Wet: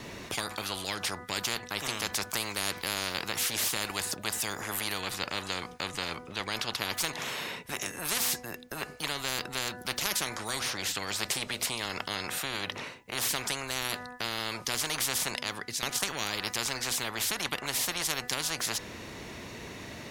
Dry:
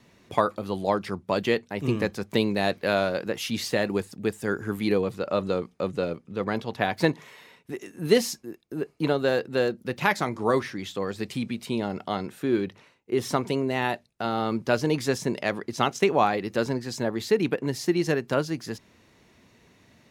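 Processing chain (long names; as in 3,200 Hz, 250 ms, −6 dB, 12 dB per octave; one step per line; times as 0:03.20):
0:15.35–0:15.83: guitar amp tone stack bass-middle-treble 5-5-5
hum removal 247.2 Hz, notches 8
every bin compressed towards the loudest bin 10 to 1
level −2 dB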